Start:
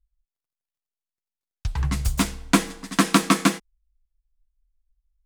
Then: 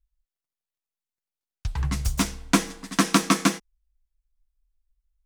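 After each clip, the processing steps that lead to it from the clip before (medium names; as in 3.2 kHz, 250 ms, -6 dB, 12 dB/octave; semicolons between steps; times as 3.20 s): dynamic bell 5.8 kHz, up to +6 dB, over -46 dBFS, Q 4.2; trim -2 dB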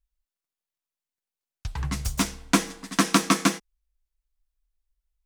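bass shelf 110 Hz -5.5 dB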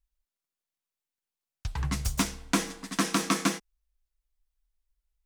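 peak limiter -11.5 dBFS, peak gain reduction 7.5 dB; trim -1 dB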